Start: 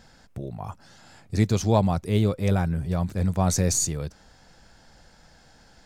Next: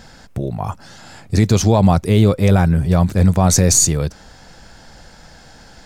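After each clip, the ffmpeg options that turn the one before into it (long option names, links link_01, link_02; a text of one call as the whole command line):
ffmpeg -i in.wav -af "alimiter=level_in=12.5dB:limit=-1dB:release=50:level=0:latency=1,volume=-1dB" out.wav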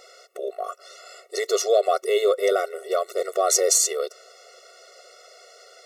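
ffmpeg -i in.wav -af "afftfilt=real='re*eq(mod(floor(b*sr/1024/370),2),1)':imag='im*eq(mod(floor(b*sr/1024/370),2),1)':win_size=1024:overlap=0.75" out.wav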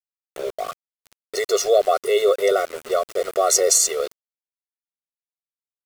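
ffmpeg -i in.wav -af "aeval=exprs='val(0)*gte(abs(val(0)),0.02)':channel_layout=same,volume=2.5dB" out.wav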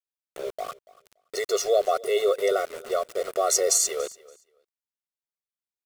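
ffmpeg -i in.wav -af "aecho=1:1:285|570:0.0841|0.0143,volume=-5dB" out.wav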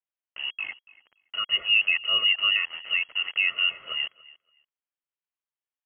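ffmpeg -i in.wav -af "lowpass=frequency=2800:width_type=q:width=0.5098,lowpass=frequency=2800:width_type=q:width=0.6013,lowpass=frequency=2800:width_type=q:width=0.9,lowpass=frequency=2800:width_type=q:width=2.563,afreqshift=-3300" out.wav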